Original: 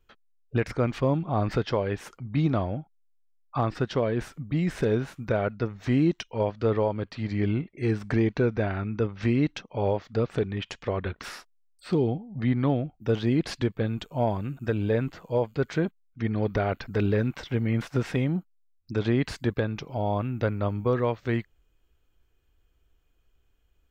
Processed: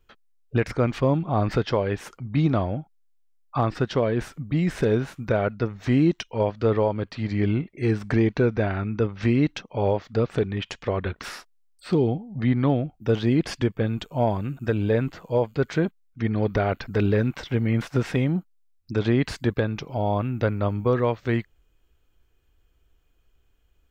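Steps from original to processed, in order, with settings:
0:13.45–0:13.87: notch filter 4,000 Hz, Q 6.1
level +3 dB

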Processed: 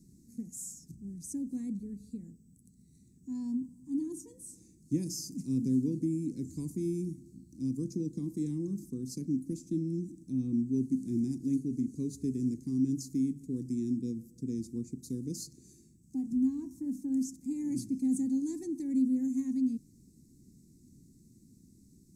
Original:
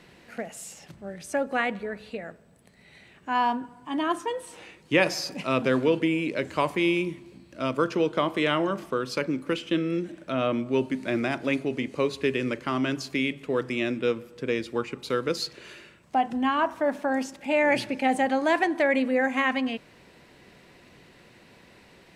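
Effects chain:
elliptic band-stop filter 270–6,500 Hz, stop band 40 dB

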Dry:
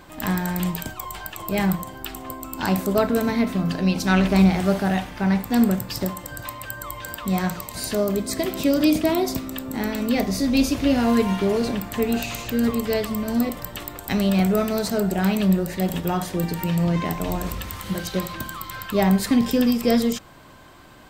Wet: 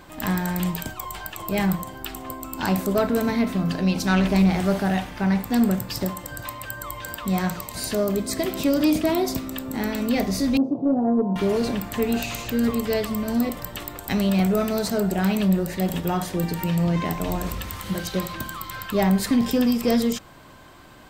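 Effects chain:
0:10.57–0:11.36: elliptic band-pass filter 140–810 Hz, stop band 40 dB
soft clipping −11 dBFS, distortion −21 dB

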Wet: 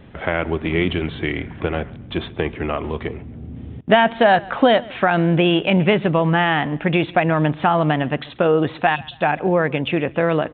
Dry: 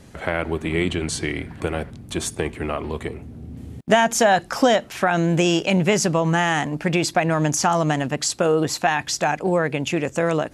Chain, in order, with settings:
time-frequency box erased 0:08.96–0:09.21, 270–2,500 Hz
on a send: repeating echo 137 ms, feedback 34%, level −22.5 dB
on the sum: downsampling to 8,000 Hz
level +2.5 dB

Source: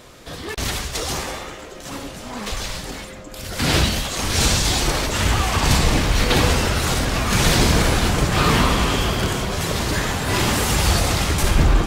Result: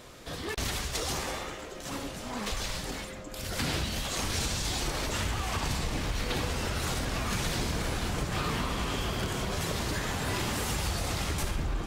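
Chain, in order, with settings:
downward compressor, threshold −23 dBFS, peak gain reduction 12.5 dB
level −5 dB

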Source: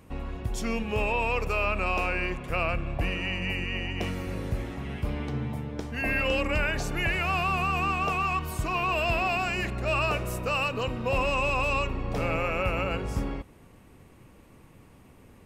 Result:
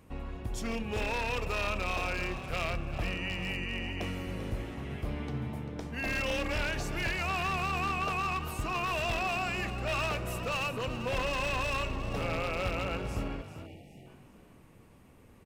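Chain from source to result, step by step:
wavefolder on the positive side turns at −23.5 dBFS
echo with shifted repeats 393 ms, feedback 40%, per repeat +46 Hz, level −12 dB
time-frequency box erased 0:13.66–0:14.07, 870–1,800 Hz
level −4.5 dB

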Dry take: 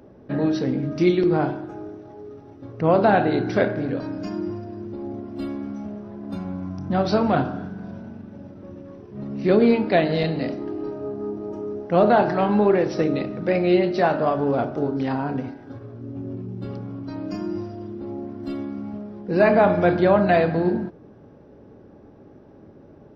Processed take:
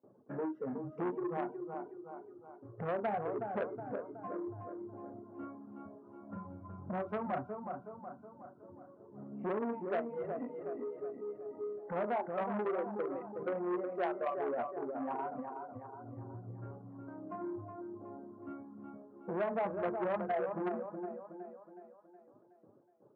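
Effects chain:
phase distortion by the signal itself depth 0.067 ms
reverb reduction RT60 1.9 s
noise gate with hold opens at −41 dBFS
noise reduction from a noise print of the clip's start 15 dB
elliptic band-pass filter 110–1,200 Hz, stop band 50 dB
low-shelf EQ 210 Hz −8.5 dB
downward compressor 2.5 to 1, threshold −45 dBFS, peak gain reduction 19.5 dB
on a send: feedback echo with a high-pass in the loop 369 ms, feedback 53%, high-pass 180 Hz, level −6 dB
on the sum: saturating transformer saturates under 1,100 Hz
level +5 dB

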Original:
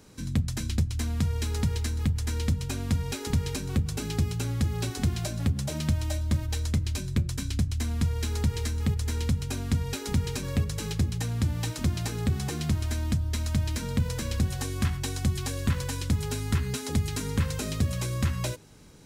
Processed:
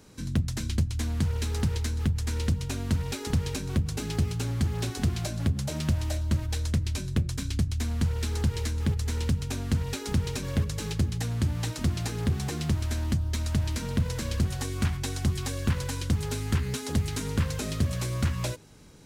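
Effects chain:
highs frequency-modulated by the lows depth 0.38 ms

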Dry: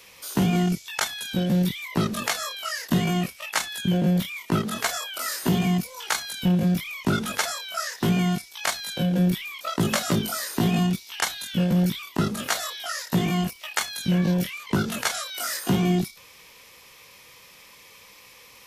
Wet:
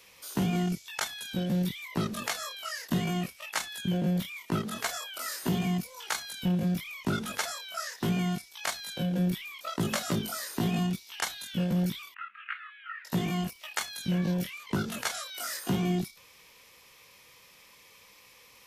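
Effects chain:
0:12.14–0:13.05: elliptic band-pass filter 1,300–2,700 Hz, stop band 50 dB
level −6.5 dB

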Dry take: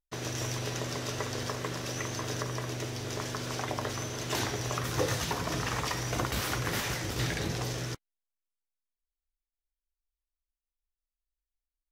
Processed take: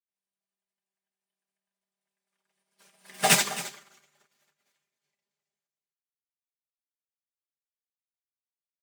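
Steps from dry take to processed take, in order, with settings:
source passing by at 0:04.51, 43 m/s, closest 3.9 metres
wrong playback speed 33 rpm record played at 45 rpm
in parallel at −4 dB: decimation without filtering 31×
on the sum: high-pass filter 170 Hz
tilt shelving filter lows −8 dB, about 640 Hz
comb filter 5 ms, depth 79%
single-tap delay 267 ms −6.5 dB
expander for the loud parts 2.5 to 1, over −53 dBFS
level +8 dB

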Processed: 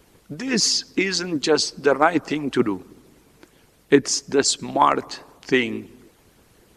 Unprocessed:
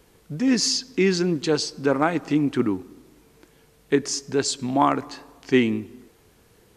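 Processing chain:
harmonic and percussive parts rebalanced harmonic −15 dB
level +6.5 dB

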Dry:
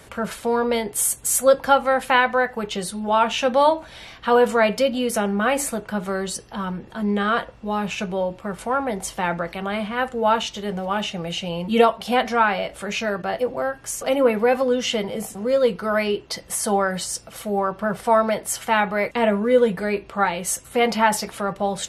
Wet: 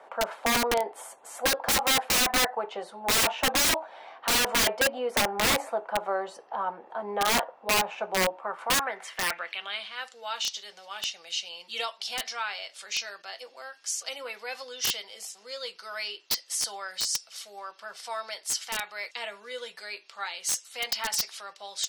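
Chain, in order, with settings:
band-pass filter sweep 800 Hz → 5,000 Hz, 0:08.30–0:10.04
high-pass filter 350 Hz 12 dB per octave
wrap-around overflow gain 23.5 dB
level +5.5 dB

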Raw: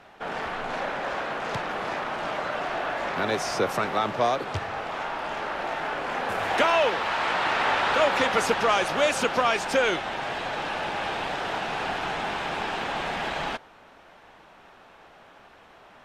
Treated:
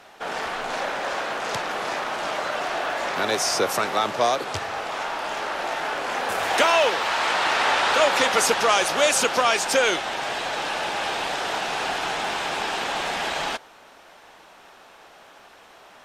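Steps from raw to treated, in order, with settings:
bass and treble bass −7 dB, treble +10 dB
level +2.5 dB

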